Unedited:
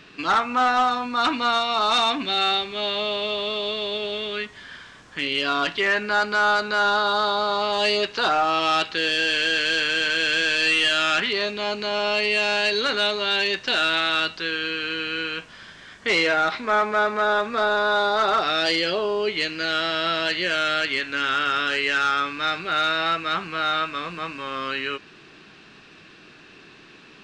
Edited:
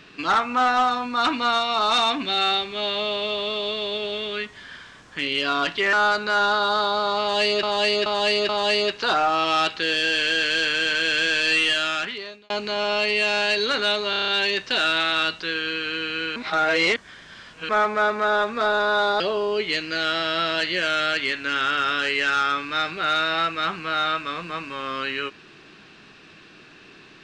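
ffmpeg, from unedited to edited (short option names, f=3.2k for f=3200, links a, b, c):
-filter_complex "[0:a]asplit=15[a][b][c][d][e][f][g][h][i][j][k][l][m][n][o];[a]atrim=end=5.932[p];[b]atrim=start=6.368:end=8.072[q];[c]atrim=start=7.638:end=8.072[r];[d]atrim=start=7.638:end=8.072[s];[e]atrim=start=7.638:end=11.65,asetpts=PTS-STARTPTS,afade=t=out:st=3.112:d=0.9[t];[f]atrim=start=11.65:end=13.282,asetpts=PTS-STARTPTS,afade=t=in:d=0.004:c=hsin[u];[g]atrim=start=13.248:end=13.282[v];[h]atrim=start=13.248:end=13.282[w];[i]atrim=start=13.248:end=13.282[x];[j]atrim=start=13.248:end=13.282[y];[k]atrim=start=13.248:end=13.282[z];[l]atrim=start=13.248:end=15.332[aa];[m]atrim=start=15.328:end=16.662,asetpts=PTS-STARTPTS,areverse[ab];[n]atrim=start=16.658:end=18.172[ac];[o]atrim=start=18.878[ad];[p][q]acrossfade=d=0.004:c1=hsin:c2=hsin[ae];[ae][r]acrossfade=d=0.004:c1=hsin:c2=hsin[af];[af][s]acrossfade=d=0.004:c1=hsin:c2=hsin[ag];[t][u]concat=n=2:v=0:a=1[ah];[ag][ah]acrossfade=d=0.004:c1=hsin:c2=hsin[ai];[ai][v]acrossfade=d=0.004:c1=hsin:c2=hsin[aj];[aj][w]acrossfade=d=0.004:c1=hsin:c2=hsin[ak];[ak][x]acrossfade=d=0.004:c1=hsin:c2=hsin[al];[al][y]acrossfade=d=0.004:c1=hsin:c2=hsin[am];[am][z]acrossfade=d=0.004:c1=hsin:c2=hsin[an];[an][aa]acrossfade=d=0.004:c1=hsin:c2=hsin[ao];[ao][ab]acrossfade=d=0.004:c1=hsin:c2=hsin[ap];[ap][ac]acrossfade=d=0.004:c1=hsin:c2=hsin[aq];[aq][ad]acrossfade=d=0.004:c1=hsin:c2=hsin"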